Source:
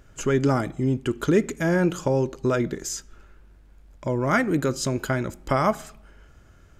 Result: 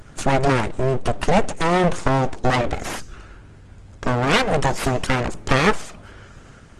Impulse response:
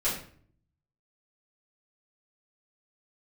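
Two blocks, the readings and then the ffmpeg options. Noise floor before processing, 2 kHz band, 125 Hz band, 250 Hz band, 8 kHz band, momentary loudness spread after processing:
-52 dBFS, +6.5 dB, +3.0 dB, 0.0 dB, +1.0 dB, 11 LU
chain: -filter_complex "[0:a]asplit=2[s0][s1];[s1]acompressor=threshold=0.0178:ratio=6,volume=0.891[s2];[s0][s2]amix=inputs=2:normalize=0,aeval=exprs='abs(val(0))':c=same,aresample=22050,aresample=44100,volume=2.24" -ar 48000 -c:a libopus -b:a 24k

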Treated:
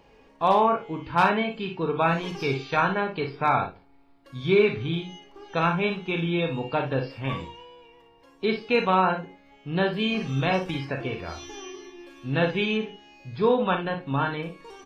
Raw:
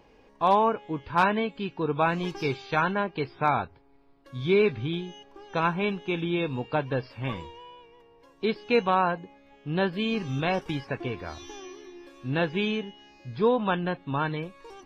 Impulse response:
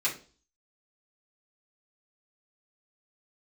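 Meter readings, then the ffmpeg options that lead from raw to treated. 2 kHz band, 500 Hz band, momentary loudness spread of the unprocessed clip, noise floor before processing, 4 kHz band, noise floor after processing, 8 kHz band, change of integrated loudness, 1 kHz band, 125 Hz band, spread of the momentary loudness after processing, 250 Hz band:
+2.5 dB, +2.0 dB, 18 LU, -58 dBFS, +3.0 dB, -56 dBFS, no reading, +2.0 dB, +2.0 dB, +2.5 dB, 17 LU, +1.5 dB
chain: -filter_complex "[0:a]aecho=1:1:37|59:0.376|0.355,asplit=2[s0][s1];[1:a]atrim=start_sample=2205,asetrate=48510,aresample=44100[s2];[s1][s2]afir=irnorm=-1:irlink=0,volume=0.224[s3];[s0][s3]amix=inputs=2:normalize=0"

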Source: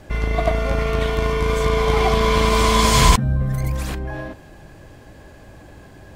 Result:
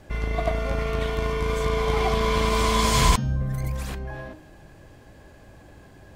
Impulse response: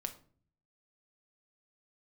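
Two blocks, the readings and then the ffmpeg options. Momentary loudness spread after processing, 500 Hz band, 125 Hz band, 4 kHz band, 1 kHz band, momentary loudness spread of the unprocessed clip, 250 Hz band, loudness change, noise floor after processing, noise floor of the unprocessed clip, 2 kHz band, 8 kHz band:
13 LU, -5.5 dB, -5.5 dB, -5.5 dB, -5.5 dB, 13 LU, -5.5 dB, -5.5 dB, -49 dBFS, -44 dBFS, -5.5 dB, -5.5 dB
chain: -af "bandreject=f=310.2:t=h:w=4,bandreject=f=620.4:t=h:w=4,bandreject=f=930.6:t=h:w=4,bandreject=f=1240.8:t=h:w=4,bandreject=f=1551:t=h:w=4,bandreject=f=1861.2:t=h:w=4,bandreject=f=2171.4:t=h:w=4,bandreject=f=2481.6:t=h:w=4,bandreject=f=2791.8:t=h:w=4,bandreject=f=3102:t=h:w=4,bandreject=f=3412.2:t=h:w=4,bandreject=f=3722.4:t=h:w=4,bandreject=f=4032.6:t=h:w=4,bandreject=f=4342.8:t=h:w=4,bandreject=f=4653:t=h:w=4,bandreject=f=4963.2:t=h:w=4,bandreject=f=5273.4:t=h:w=4,bandreject=f=5583.6:t=h:w=4,bandreject=f=5893.8:t=h:w=4,bandreject=f=6204:t=h:w=4,bandreject=f=6514.2:t=h:w=4,volume=0.531"

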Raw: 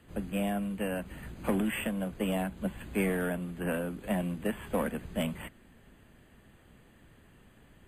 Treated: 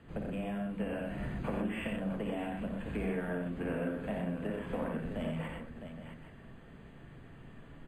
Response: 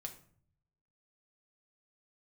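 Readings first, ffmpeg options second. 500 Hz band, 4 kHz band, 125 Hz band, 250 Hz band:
-3.5 dB, -7.0 dB, -2.0 dB, -3.5 dB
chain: -filter_complex "[0:a]highshelf=f=11000:g=-5,acompressor=threshold=0.0126:ratio=6,aemphasis=mode=reproduction:type=75kf,aecho=1:1:57|88|124|658|818:0.447|0.596|0.531|0.355|0.211,asplit=2[s0][s1];[1:a]atrim=start_sample=2205[s2];[s1][s2]afir=irnorm=-1:irlink=0,volume=1.41[s3];[s0][s3]amix=inputs=2:normalize=0,volume=0.75"

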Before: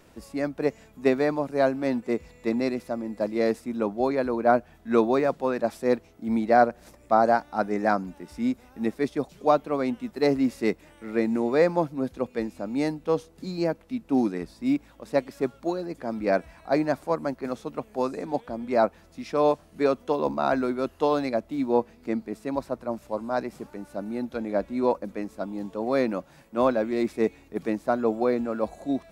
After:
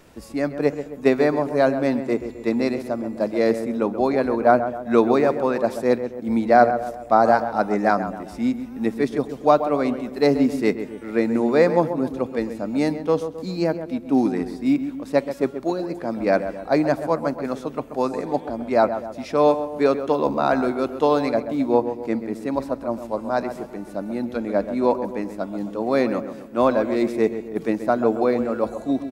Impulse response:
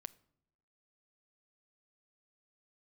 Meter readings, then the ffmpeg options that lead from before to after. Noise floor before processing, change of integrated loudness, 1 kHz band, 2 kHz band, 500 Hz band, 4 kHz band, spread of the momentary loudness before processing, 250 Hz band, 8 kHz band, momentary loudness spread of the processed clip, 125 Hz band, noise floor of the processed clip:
-55 dBFS, +4.5 dB, +4.5 dB, +4.5 dB, +5.0 dB, +4.0 dB, 9 LU, +4.5 dB, no reading, 9 LU, +5.0 dB, -38 dBFS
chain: -filter_complex "[0:a]asplit=2[s0][s1];[s1]adelay=132,lowpass=f=1600:p=1,volume=0.335,asplit=2[s2][s3];[s3]adelay=132,lowpass=f=1600:p=1,volume=0.5,asplit=2[s4][s5];[s5]adelay=132,lowpass=f=1600:p=1,volume=0.5,asplit=2[s6][s7];[s7]adelay=132,lowpass=f=1600:p=1,volume=0.5,asplit=2[s8][s9];[s9]adelay=132,lowpass=f=1600:p=1,volume=0.5,asplit=2[s10][s11];[s11]adelay=132,lowpass=f=1600:p=1,volume=0.5[s12];[s0][s2][s4][s6][s8][s10][s12]amix=inputs=7:normalize=0,asplit=2[s13][s14];[1:a]atrim=start_sample=2205[s15];[s14][s15]afir=irnorm=-1:irlink=0,volume=2.82[s16];[s13][s16]amix=inputs=2:normalize=0,volume=0.631"

